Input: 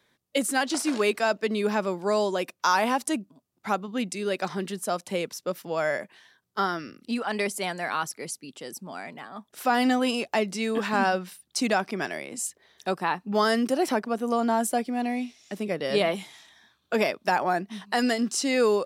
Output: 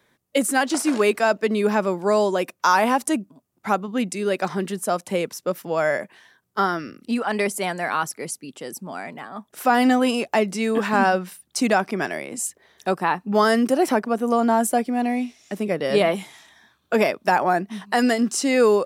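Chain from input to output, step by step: peaking EQ 4.1 kHz -5.5 dB 1.3 oct; trim +5.5 dB

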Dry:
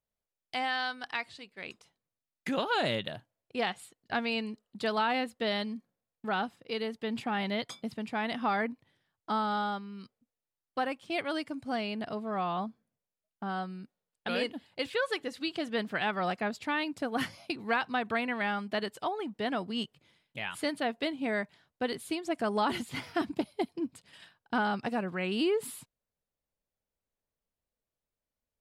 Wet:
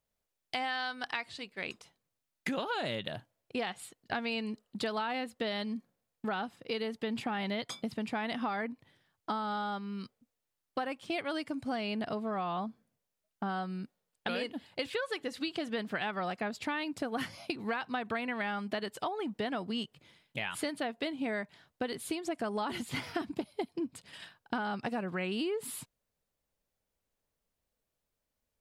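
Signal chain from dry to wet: compression, threshold -37 dBFS, peak gain reduction 12 dB; trim +5 dB

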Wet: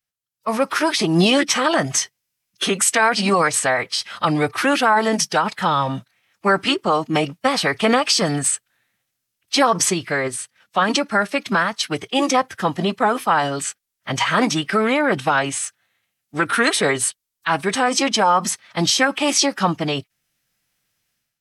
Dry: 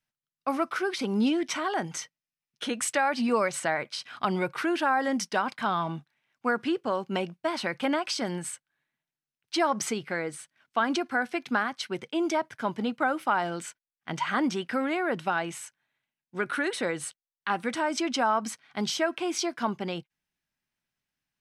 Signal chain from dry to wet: level rider gain up to 14.5 dB; formant-preserving pitch shift -3.5 st; treble shelf 3.8 kHz +8.5 dB; loudness maximiser +2.5 dB; trim -5 dB

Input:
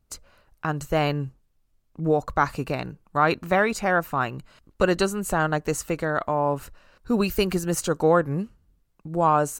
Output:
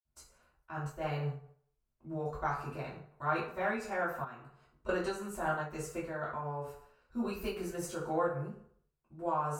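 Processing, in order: reverberation RT60 0.60 s, pre-delay 46 ms; 4.24–4.89 s: compression 2:1, threshold -54 dBFS, peak gain reduction 11.5 dB; random flutter of the level, depth 55%; trim +3 dB

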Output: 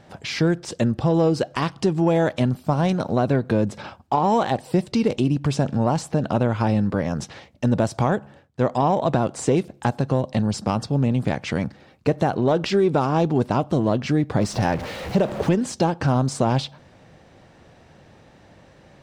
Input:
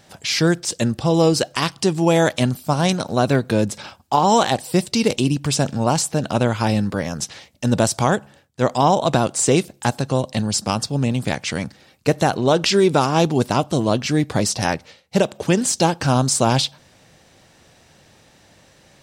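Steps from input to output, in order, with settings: 14.41–15.55 s: jump at every zero crossing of -26 dBFS; treble shelf 6.7 kHz -9.5 dB; in parallel at -5 dB: saturation -13.5 dBFS, distortion -13 dB; on the sum: compression 2:1, threshold -19 dBFS, peak gain reduction 6 dB; treble shelf 2.3 kHz -11 dB

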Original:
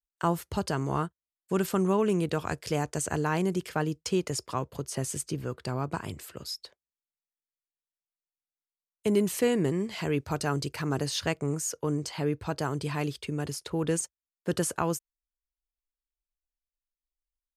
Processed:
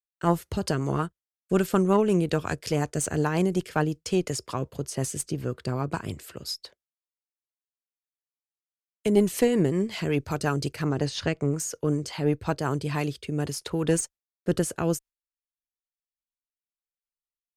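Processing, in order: gate with hold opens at -51 dBFS; rotary cabinet horn 5.5 Hz, later 0.65 Hz, at 12.45 s; Chebyshev shaper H 2 -14 dB, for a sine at -14 dBFS; 10.84–11.60 s: distance through air 63 m; trim +4.5 dB

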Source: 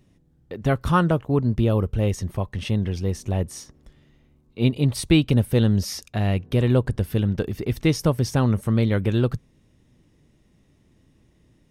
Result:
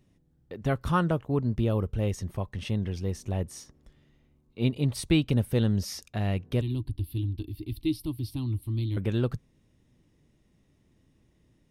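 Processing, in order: 6.61–8.97 s: FFT filter 110 Hz 0 dB, 190 Hz -19 dB, 310 Hz +4 dB, 480 Hz -30 dB, 1 kHz -14 dB, 1.5 kHz -29 dB, 2.6 kHz -7 dB, 4.3 kHz +1 dB, 6.6 kHz -25 dB, 10 kHz 0 dB; trim -6 dB

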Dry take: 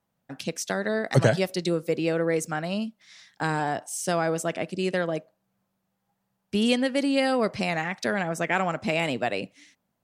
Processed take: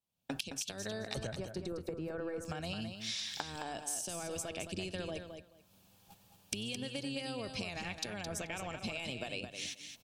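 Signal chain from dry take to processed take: octave divider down 1 oct, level -5 dB; recorder AGC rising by 41 dB/s; band-stop 2 kHz, Q 7; gate -41 dBFS, range -17 dB; resonant high shelf 2.1 kHz +9 dB, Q 1.5, from 1.27 s -7 dB, from 2.45 s +7.5 dB; compression 12:1, threshold -34 dBFS, peak gain reduction 25.5 dB; feedback delay 216 ms, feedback 16%, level -7.5 dB; trim -3 dB

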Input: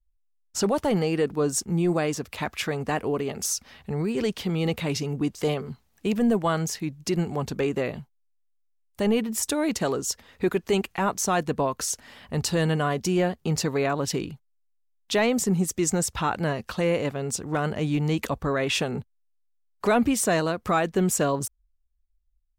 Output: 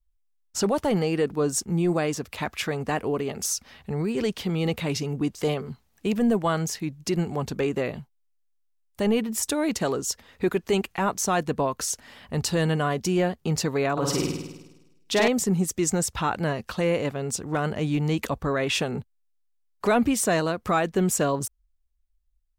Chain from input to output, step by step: 13.92–15.28 s: flutter echo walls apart 8.8 m, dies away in 1 s

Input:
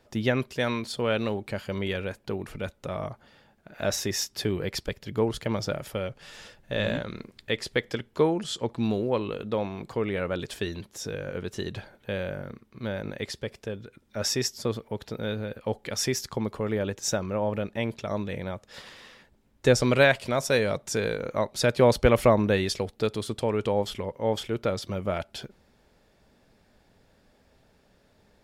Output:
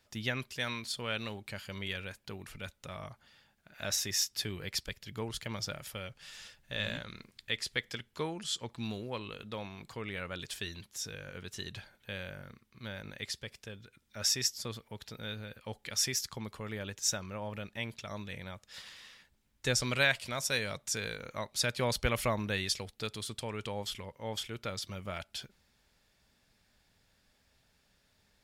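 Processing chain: amplifier tone stack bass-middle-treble 5-5-5; trim +5.5 dB

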